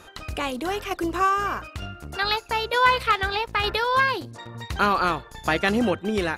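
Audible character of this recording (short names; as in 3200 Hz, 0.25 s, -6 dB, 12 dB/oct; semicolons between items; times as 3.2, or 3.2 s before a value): tremolo saw down 1.1 Hz, depth 45%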